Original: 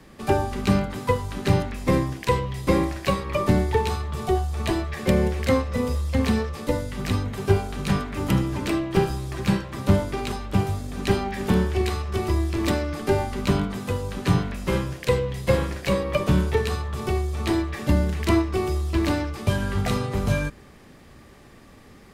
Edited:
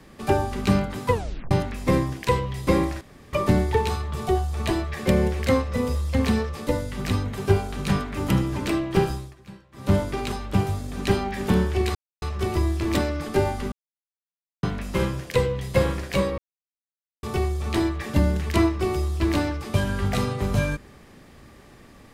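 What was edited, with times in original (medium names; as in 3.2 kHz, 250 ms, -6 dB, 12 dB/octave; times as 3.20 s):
1.12 s: tape stop 0.39 s
3.01–3.33 s: room tone
9.11–9.96 s: dip -21.5 dB, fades 0.24 s
11.95 s: insert silence 0.27 s
13.45–14.36 s: mute
16.11–16.96 s: mute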